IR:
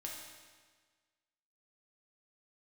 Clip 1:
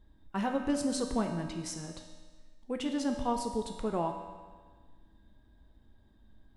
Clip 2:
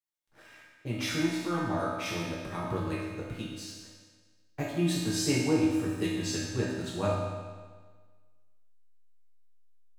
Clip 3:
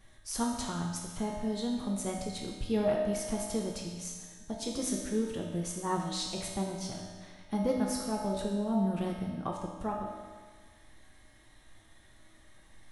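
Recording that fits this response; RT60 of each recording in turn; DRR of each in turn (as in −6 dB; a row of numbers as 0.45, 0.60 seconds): 3; 1.5, 1.5, 1.5 seconds; 3.0, −8.0, −2.5 decibels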